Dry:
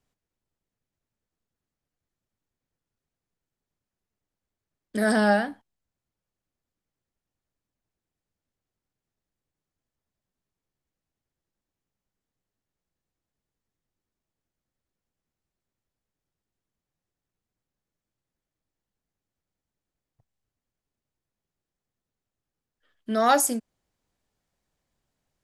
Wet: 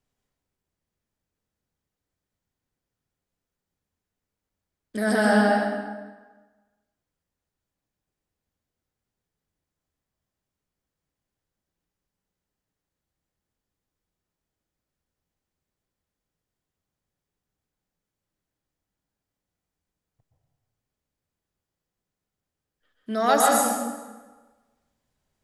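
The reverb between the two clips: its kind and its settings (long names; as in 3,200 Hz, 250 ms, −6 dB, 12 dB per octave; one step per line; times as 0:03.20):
dense smooth reverb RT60 1.3 s, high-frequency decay 0.75×, pre-delay 110 ms, DRR −2.5 dB
level −2 dB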